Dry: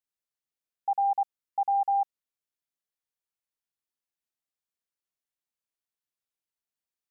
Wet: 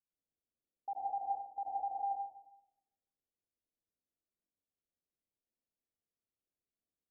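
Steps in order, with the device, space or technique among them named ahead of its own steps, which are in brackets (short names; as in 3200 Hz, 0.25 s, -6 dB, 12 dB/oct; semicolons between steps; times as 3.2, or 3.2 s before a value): next room (LPF 590 Hz 24 dB/oct; reverb RT60 0.85 s, pre-delay 72 ms, DRR -5.5 dB); gain -2 dB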